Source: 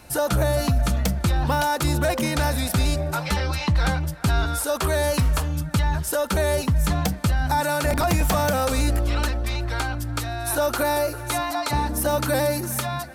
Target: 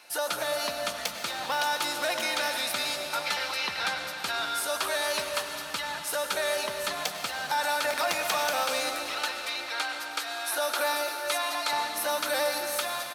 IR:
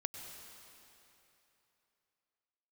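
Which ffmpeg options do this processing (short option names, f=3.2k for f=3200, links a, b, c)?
-filter_complex "[0:a]highpass=520,bandreject=f=7.4k:w=24,acrossover=split=4500[a][b];[a]crystalizer=i=6:c=0[c];[b]asplit=2[d][e];[e]adelay=16,volume=-5dB[f];[d][f]amix=inputs=2:normalize=0[g];[c][g]amix=inputs=2:normalize=0[h];[1:a]atrim=start_sample=2205[i];[h][i]afir=irnorm=-1:irlink=0,volume=-5.5dB"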